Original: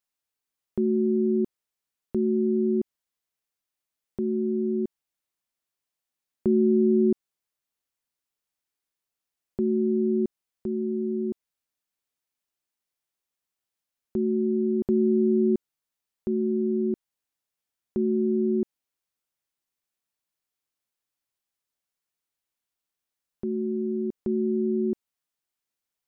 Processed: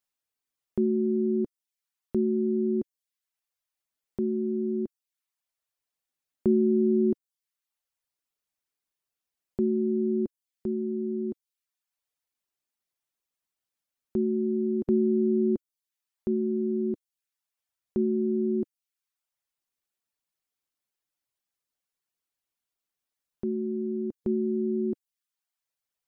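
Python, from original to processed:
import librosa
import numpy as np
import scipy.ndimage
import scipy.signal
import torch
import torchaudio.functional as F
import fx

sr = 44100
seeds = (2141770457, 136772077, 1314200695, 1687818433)

y = fx.dereverb_blind(x, sr, rt60_s=0.69)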